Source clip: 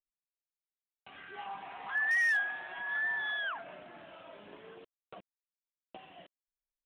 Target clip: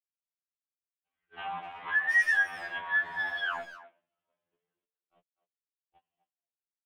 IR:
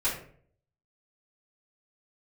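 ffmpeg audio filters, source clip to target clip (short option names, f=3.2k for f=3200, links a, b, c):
-filter_complex "[0:a]agate=range=-45dB:threshold=-44dB:ratio=16:detection=peak,lowshelf=f=86:g=9.5,asplit=2[a][b];[b]acompressor=threshold=-42dB:ratio=6,volume=1dB[c];[a][c]amix=inputs=2:normalize=0,asplit=2[d][e];[e]adelay=250,highpass=300,lowpass=3.4k,asoftclip=type=hard:threshold=-31.5dB,volume=-14dB[f];[d][f]amix=inputs=2:normalize=0,afftfilt=real='re*2*eq(mod(b,4),0)':imag='im*2*eq(mod(b,4),0)':win_size=2048:overlap=0.75,volume=3dB"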